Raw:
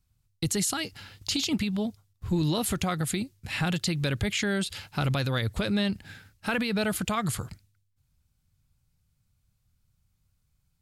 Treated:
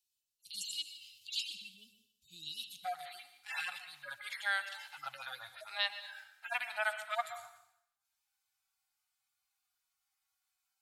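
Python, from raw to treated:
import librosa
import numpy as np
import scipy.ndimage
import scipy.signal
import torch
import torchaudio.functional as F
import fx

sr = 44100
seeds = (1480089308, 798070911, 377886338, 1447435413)

y = fx.hpss_only(x, sr, part='harmonic')
y = fx.ellip_highpass(y, sr, hz=fx.steps((0.0, 2700.0), (2.84, 720.0)), order=4, stop_db=40)
y = fx.rev_plate(y, sr, seeds[0], rt60_s=0.72, hf_ratio=0.95, predelay_ms=105, drr_db=11.0)
y = y * librosa.db_to_amplitude(1.5)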